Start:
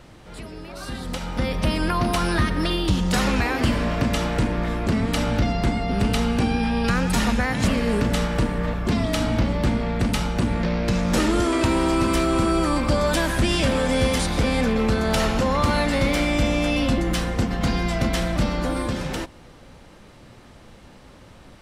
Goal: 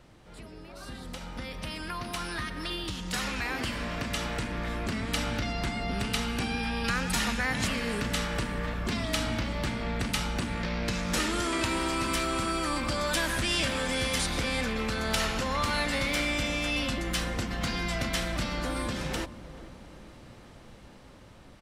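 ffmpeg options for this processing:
-filter_complex "[0:a]asettb=1/sr,asplit=3[a][b][c];[a]atrim=end=6.284[d];[b]atrim=start=6.28:end=6.87,asetpts=PTS-STARTPTS,afade=t=in:d=0.004:c=qsin,afade=t=out:st=0.586:d=0.004:c=qsin,equalizer=f=12k:w=5.3:g=8.5[e];[c]atrim=start=6.866[f];[d][e]acrossfade=d=0.004:c1=hsin:c2=qsin[g];[g][f]acrossfade=d=0.004:c1=qsin:c2=hsin,acrossover=split=1200[h][i];[h]acompressor=threshold=-28dB:ratio=6[j];[j][i]amix=inputs=2:normalize=0,asplit=2[k][l];[l]adelay=435,lowpass=f=800:p=1,volume=-13.5dB,asplit=2[m][n];[n]adelay=435,lowpass=f=800:p=1,volume=0.53,asplit=2[o][p];[p]adelay=435,lowpass=f=800:p=1,volume=0.53,asplit=2[q][r];[r]adelay=435,lowpass=f=800:p=1,volume=0.53,asplit=2[s][t];[t]adelay=435,lowpass=f=800:p=1,volume=0.53[u];[k][m][o][q][s][u]amix=inputs=6:normalize=0,dynaudnorm=f=440:g=17:m=8dB,volume=-9dB"

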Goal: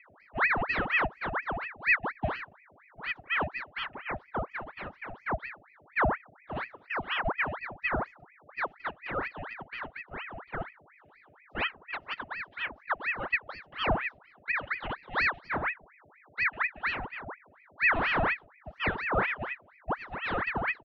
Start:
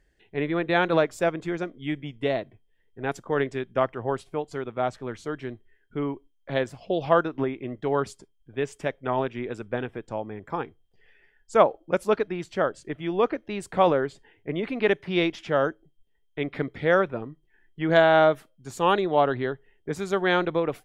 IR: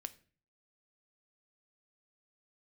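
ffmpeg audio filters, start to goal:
-filter_complex "[0:a]lowpass=f=3.7k:w=0.5412,lowpass=f=3.7k:w=1.3066,asplit=2[a][b];[1:a]atrim=start_sample=2205,lowpass=2.9k[c];[b][c]afir=irnorm=-1:irlink=0,volume=-2dB[d];[a][d]amix=inputs=2:normalize=0,aeval=exprs='val(0)+0.0178*(sin(2*PI*50*n/s)+sin(2*PI*2*50*n/s)/2+sin(2*PI*3*50*n/s)/3+sin(2*PI*4*50*n/s)/4+sin(2*PI*5*50*n/s)/5)':c=same,asplit=3[e][f][g];[e]bandpass=f=300:t=q:w=8,volume=0dB[h];[f]bandpass=f=870:t=q:w=8,volume=-6dB[i];[g]bandpass=f=2.24k:t=q:w=8,volume=-9dB[j];[h][i][j]amix=inputs=3:normalize=0,aecho=1:1:3.2:0.82,aeval=exprs='val(0)*sin(2*PI*1300*n/s+1300*0.75/4.2*sin(2*PI*4.2*n/s))':c=same"

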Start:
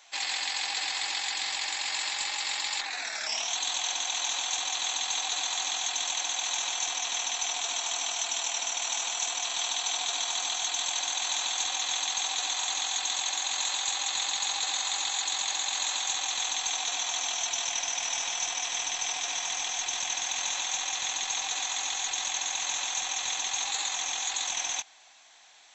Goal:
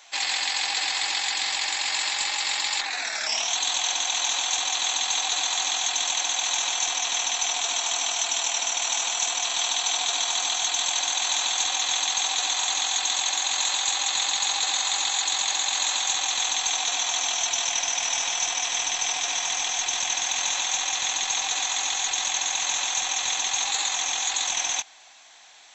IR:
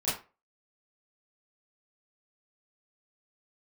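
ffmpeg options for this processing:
-af "acontrast=31"

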